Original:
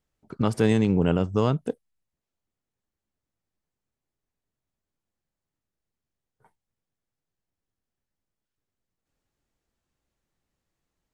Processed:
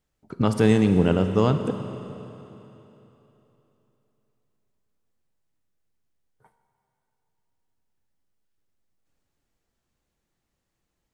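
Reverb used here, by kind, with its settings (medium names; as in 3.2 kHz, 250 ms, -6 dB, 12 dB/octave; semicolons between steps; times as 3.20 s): Schroeder reverb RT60 3.3 s, combs from 33 ms, DRR 8 dB; trim +2 dB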